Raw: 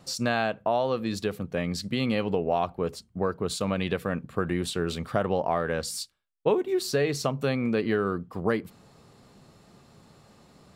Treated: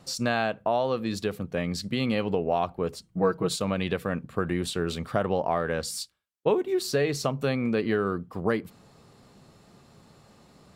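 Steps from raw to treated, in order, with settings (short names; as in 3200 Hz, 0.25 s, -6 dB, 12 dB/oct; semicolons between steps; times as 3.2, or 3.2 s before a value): 3.03–3.56 comb 6.2 ms, depth 93%; Opus 96 kbps 48000 Hz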